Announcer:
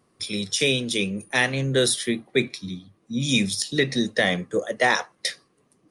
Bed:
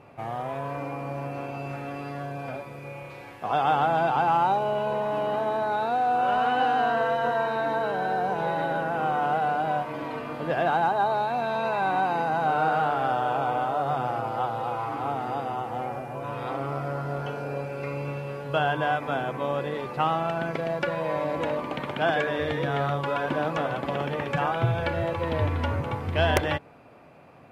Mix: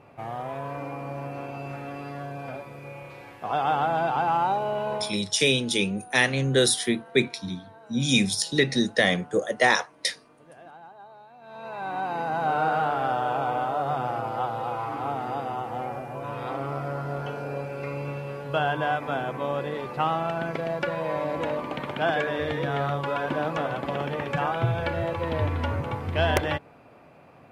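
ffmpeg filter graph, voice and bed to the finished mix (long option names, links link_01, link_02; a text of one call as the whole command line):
ffmpeg -i stem1.wav -i stem2.wav -filter_complex "[0:a]adelay=4800,volume=0dB[link_01];[1:a]volume=21.5dB,afade=type=out:start_time=4.94:duration=0.23:silence=0.0794328,afade=type=in:start_time=11.4:duration=1.12:silence=0.0707946[link_02];[link_01][link_02]amix=inputs=2:normalize=0" out.wav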